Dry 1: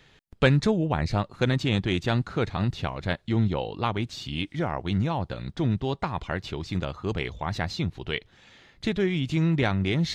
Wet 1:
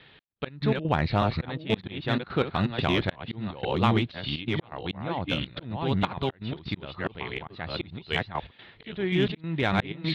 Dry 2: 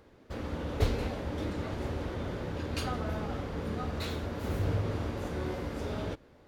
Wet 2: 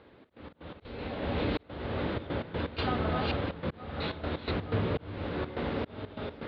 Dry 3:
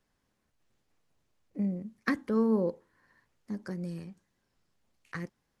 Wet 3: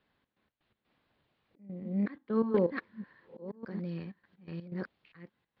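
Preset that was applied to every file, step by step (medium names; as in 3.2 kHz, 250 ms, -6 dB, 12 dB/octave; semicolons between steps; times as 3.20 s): chunks repeated in reverse 608 ms, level -1.5 dB; slow attack 454 ms; steep low-pass 4.1 kHz 48 dB/octave; trance gate "xx.x.x.xxxxxx.xx" 124 bpm -12 dB; high-pass 110 Hz 6 dB/octave; treble shelf 2.6 kHz +4 dB; in parallel at -8 dB: hard clipper -21.5 dBFS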